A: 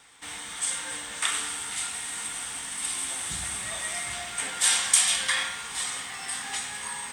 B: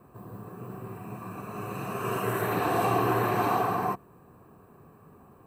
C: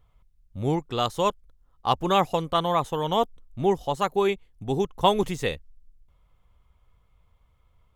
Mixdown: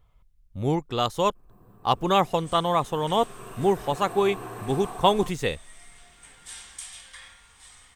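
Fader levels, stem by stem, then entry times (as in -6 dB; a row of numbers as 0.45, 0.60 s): -19.5, -12.5, +0.5 dB; 1.85, 1.35, 0.00 s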